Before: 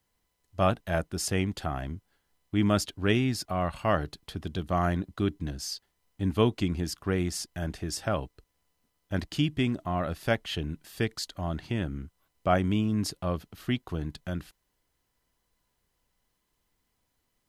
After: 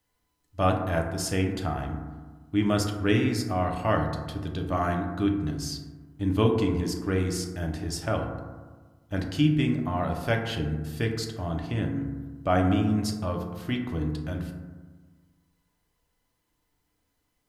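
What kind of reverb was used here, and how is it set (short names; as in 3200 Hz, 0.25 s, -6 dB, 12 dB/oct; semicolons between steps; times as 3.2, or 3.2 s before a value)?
FDN reverb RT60 1.4 s, low-frequency decay 1.2×, high-frequency decay 0.3×, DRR 1.5 dB; gain -1 dB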